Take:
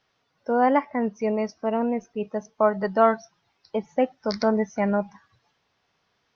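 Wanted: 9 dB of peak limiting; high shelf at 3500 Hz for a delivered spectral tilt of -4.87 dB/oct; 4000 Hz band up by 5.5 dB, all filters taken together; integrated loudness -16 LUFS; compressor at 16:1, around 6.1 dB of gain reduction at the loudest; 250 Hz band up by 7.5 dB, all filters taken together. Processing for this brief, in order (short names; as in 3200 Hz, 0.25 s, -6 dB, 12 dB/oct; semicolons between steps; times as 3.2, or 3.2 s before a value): bell 250 Hz +8.5 dB; high shelf 3500 Hz +4 dB; bell 4000 Hz +4 dB; compressor 16:1, threshold -17 dBFS; gain +11 dB; limiter -6 dBFS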